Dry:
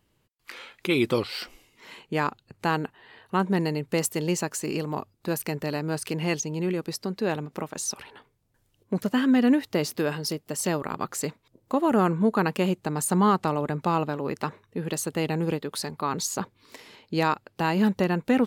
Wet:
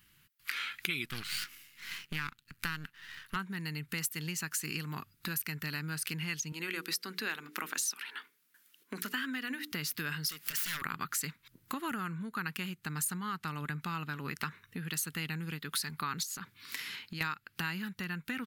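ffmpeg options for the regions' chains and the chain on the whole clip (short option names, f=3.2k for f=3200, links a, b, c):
-filter_complex "[0:a]asettb=1/sr,asplit=3[a][b][c];[a]atrim=end=1.054[d];[b]atrim=start=1.05:end=3.36,asetpts=PTS-STARTPTS,afade=t=in:d=0.004:c=qsin,afade=t=out:st=2.306:d=0.004:c=qsin,highpass=92,equalizer=f=660:w=1.8:g=-8.5,aeval=exprs='max(val(0),0)':c=same[e];[c]atrim=start=3.356[f];[d][e]acrossfade=d=0.004:c1=hsin:c2=qsin[g];[g][f]acrossfade=d=0.004:c1=qsin:c2=hsin,asettb=1/sr,asplit=3[h][i][j];[h]atrim=end=6.524[k];[i]atrim=start=6.52:end=9.72,asetpts=PTS-STARTPTS,afade=t=in:d=0.004:c=qsin,afade=t=out:st=3.196:d=0.004:c=qsin,highpass=f=260:w=0.5412,highpass=f=260:w=1.3066,bandreject=f=60:t=h:w=6,bandreject=f=120:t=h:w=6,bandreject=f=180:t=h:w=6,bandreject=f=240:t=h:w=6,bandreject=f=300:t=h:w=6,bandreject=f=360:t=h:w=6,bandreject=f=420:t=h:w=6,bandreject=f=480:t=h:w=6[l];[j]atrim=start=9.716[m];[k][l]acrossfade=d=0.004:c1=hsin:c2=qsin[n];[n][m]acrossfade=d=0.004:c1=qsin:c2=hsin,asettb=1/sr,asplit=3[o][p][q];[o]atrim=end=10.294[r];[p]atrim=start=10.29:end=10.82,asetpts=PTS-STARTPTS,afade=t=in:d=0.004:c=qsin,afade=t=out:st=0.526:d=0.004:c=qsin,highpass=f=1k:p=1,aeval=exprs='0.15*sin(PI/2*7.94*val(0)/0.15)':c=same,acompressor=threshold=-35dB:ratio=8:attack=3.2:release=140:knee=1:detection=peak[s];[q]atrim=start=10.816[t];[r][s]acrossfade=d=0.004:c1=hsin:c2=qsin[u];[u][t]acrossfade=d=0.004:c1=qsin:c2=hsin,asettb=1/sr,asplit=3[v][w][x];[v]atrim=end=16.234[y];[w]atrim=start=16.23:end=17.21,asetpts=PTS-STARTPTS,afade=t=in:d=0.004:c=qsin,afade=t=out:st=0.976:d=0.004:c=qsin,highpass=82,acompressor=threshold=-37dB:ratio=6:attack=3.2:release=140:knee=1:detection=peak[z];[x]atrim=start=17.206[aa];[y][z]acrossfade=d=0.004:c1=hsin:c2=qsin[ab];[ab][aa]acrossfade=d=0.004:c1=qsin:c2=hsin,firequalizer=gain_entry='entry(110,0);entry(160,10);entry(350,-6);entry(580,-16);entry(1400,10);entry(4100,8);entry(7700,6);entry(12000,14)':delay=0.05:min_phase=1,acompressor=threshold=-32dB:ratio=6,equalizer=f=200:t=o:w=1.1:g=-8"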